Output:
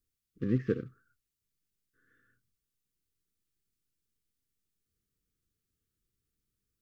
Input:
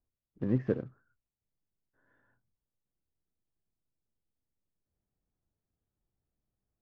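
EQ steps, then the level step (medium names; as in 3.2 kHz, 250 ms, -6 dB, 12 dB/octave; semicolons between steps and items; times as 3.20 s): brick-wall FIR band-stop 520–1100 Hz; treble shelf 2.4 kHz +8.5 dB; 0.0 dB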